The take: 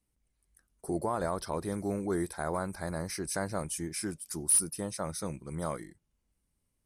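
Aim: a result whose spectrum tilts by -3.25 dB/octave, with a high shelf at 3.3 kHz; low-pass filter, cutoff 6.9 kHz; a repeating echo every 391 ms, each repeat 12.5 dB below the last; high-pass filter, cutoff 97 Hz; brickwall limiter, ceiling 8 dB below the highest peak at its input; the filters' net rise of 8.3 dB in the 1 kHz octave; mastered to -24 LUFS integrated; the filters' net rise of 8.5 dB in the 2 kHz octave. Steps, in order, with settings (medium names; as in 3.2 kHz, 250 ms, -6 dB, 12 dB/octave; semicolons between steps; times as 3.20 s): high-pass 97 Hz; low-pass 6.9 kHz; peaking EQ 1 kHz +8 dB; peaking EQ 2 kHz +5.5 dB; treble shelf 3.3 kHz +9 dB; peak limiter -19.5 dBFS; feedback delay 391 ms, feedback 24%, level -12.5 dB; trim +8.5 dB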